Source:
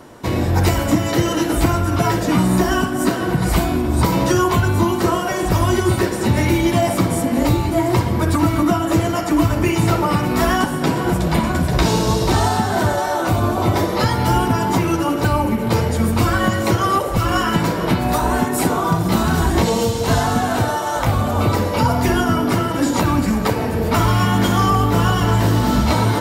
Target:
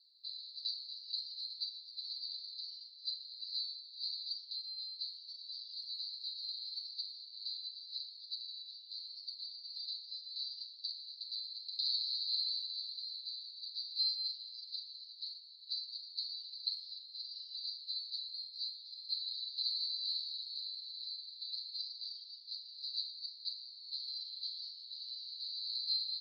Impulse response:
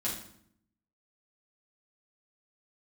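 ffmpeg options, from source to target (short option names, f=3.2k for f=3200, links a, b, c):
-filter_complex "[0:a]asuperpass=centerf=4300:order=8:qfactor=6,asplit=2[a][b];[b]adelay=42,volume=-10.5dB[c];[a][c]amix=inputs=2:normalize=0,asplit=2[d][e];[e]adelay=7.9,afreqshift=0.41[f];[d][f]amix=inputs=2:normalize=1,volume=2.5dB"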